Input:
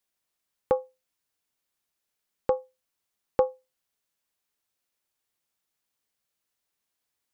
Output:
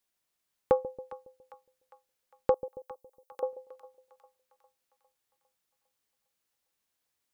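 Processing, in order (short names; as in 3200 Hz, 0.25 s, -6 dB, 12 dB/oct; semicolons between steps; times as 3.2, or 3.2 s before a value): 2.54–3.43 differentiator; split-band echo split 740 Hz, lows 0.138 s, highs 0.404 s, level -14 dB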